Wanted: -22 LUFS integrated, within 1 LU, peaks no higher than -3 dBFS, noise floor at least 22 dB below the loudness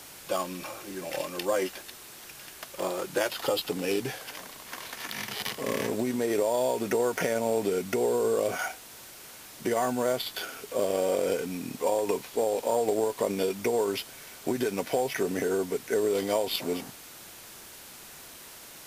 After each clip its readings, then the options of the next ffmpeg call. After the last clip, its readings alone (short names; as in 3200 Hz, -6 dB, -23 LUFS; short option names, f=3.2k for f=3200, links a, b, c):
noise floor -47 dBFS; noise floor target -52 dBFS; loudness -29.5 LUFS; peak -14.0 dBFS; loudness target -22.0 LUFS
-> -af "afftdn=nr=6:nf=-47"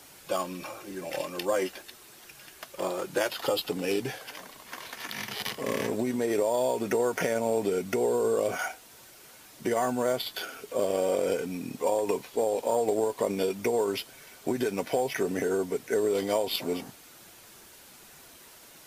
noise floor -52 dBFS; loudness -29.5 LUFS; peak -14.5 dBFS; loudness target -22.0 LUFS
-> -af "volume=7.5dB"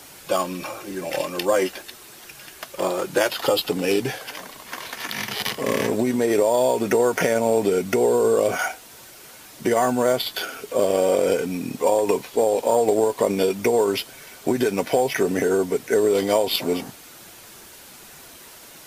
loudness -22.0 LUFS; peak -7.0 dBFS; noise floor -45 dBFS